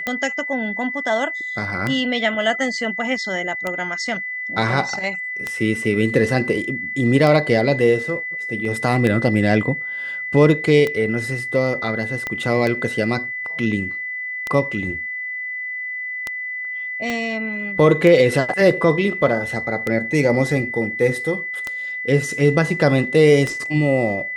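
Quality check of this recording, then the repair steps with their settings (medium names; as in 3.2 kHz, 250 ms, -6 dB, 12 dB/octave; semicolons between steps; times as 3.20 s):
tick 33 1/3 rpm -9 dBFS
whine 2 kHz -25 dBFS
12.27 s: pop -11 dBFS
17.10 s: pop -11 dBFS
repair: de-click; band-stop 2 kHz, Q 30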